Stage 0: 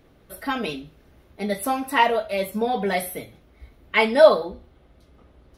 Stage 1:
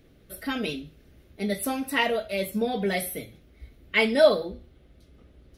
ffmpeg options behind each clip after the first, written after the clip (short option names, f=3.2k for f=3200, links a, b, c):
-af "equalizer=f=950:w=1.3:g=-11.5"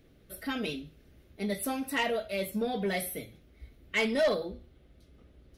-af "asoftclip=type=tanh:threshold=-17.5dB,volume=-3.5dB"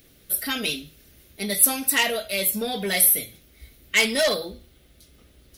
-af "crystalizer=i=6.5:c=0,volume=2dB"